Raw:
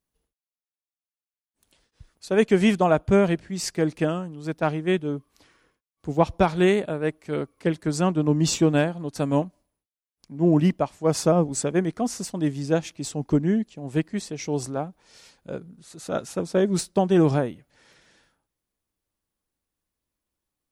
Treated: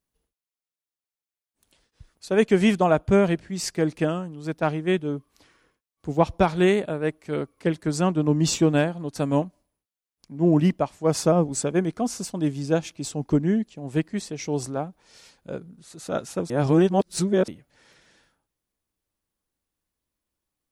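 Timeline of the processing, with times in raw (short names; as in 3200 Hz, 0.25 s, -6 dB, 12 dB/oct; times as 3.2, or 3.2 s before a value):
11.59–13.2 notch 1900 Hz
16.5–17.48 reverse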